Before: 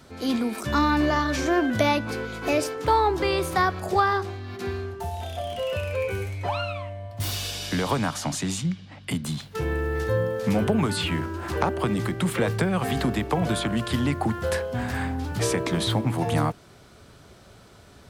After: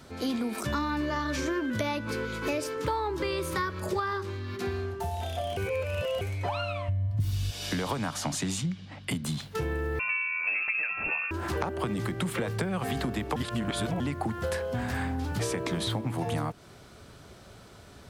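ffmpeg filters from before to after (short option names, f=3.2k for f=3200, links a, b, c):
-filter_complex "[0:a]asettb=1/sr,asplit=3[a][b][c];[a]atrim=end=0.744[d];[b]atrim=start=0.74:end=4.6,asetpts=PTS-STARTPTS,afade=t=in:d=0.004:c=qsin,afade=t=out:st=3.856:d=0.004:c=qsin,asuperstop=centerf=730:order=4:qfactor=4[e];[c]atrim=start=4.596[f];[d][e]acrossfade=d=0.004:c1=hsin:c2=qsin[g];[g][f]acrossfade=d=0.004:c1=qsin:c2=hsin,asplit=3[h][i][j];[h]afade=t=out:st=6.88:d=0.02[k];[i]asubboost=boost=11.5:cutoff=170,afade=t=in:st=6.88:d=0.02,afade=t=out:st=7.5:d=0.02[l];[j]afade=t=in:st=7.5:d=0.02[m];[k][l][m]amix=inputs=3:normalize=0,asettb=1/sr,asplit=3[n][o][p];[n]atrim=end=9.994[q];[o]atrim=start=9.99:end=11.31,asetpts=PTS-STARTPTS,afade=t=in:d=0.004:c=qsin,afade=t=out:st=1.316:d=0.004:c=qsin,lowpass=f=2.4k:t=q:w=0.5098,lowpass=f=2.4k:t=q:w=0.6013,lowpass=f=2.4k:t=q:w=0.9,lowpass=f=2.4k:t=q:w=2.563,afreqshift=-2800[r];[p]atrim=start=11.306[s];[q][r]acrossfade=d=0.004:c1=hsin:c2=qsin[t];[t][s]acrossfade=d=0.004:c1=qsin:c2=hsin,asplit=5[u][v][w][x][y];[u]atrim=end=5.572[z];[v]atrim=start=5.568:end=6.212,asetpts=PTS-STARTPTS,areverse[aa];[w]atrim=start=6.208:end=13.362[ab];[x]atrim=start=13.358:end=14.002,asetpts=PTS-STARTPTS,areverse[ac];[y]atrim=start=13.998[ad];[z][aa]acrossfade=d=0.004:c1=hsin:c2=hsin[ae];[ae][ab]acrossfade=d=0.004:c1=hsin:c2=hsin[af];[af][ac]acrossfade=d=0.004:c1=hsin:c2=hsin[ag];[ag][ad]acrossfade=d=0.004:c1=hsin:c2=hsin,acompressor=threshold=-27dB:ratio=6"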